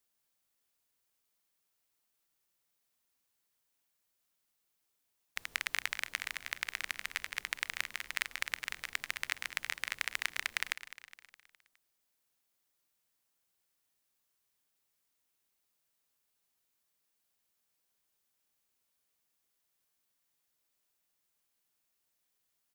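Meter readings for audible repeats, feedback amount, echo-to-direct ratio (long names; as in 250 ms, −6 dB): 4, 52%, −12.5 dB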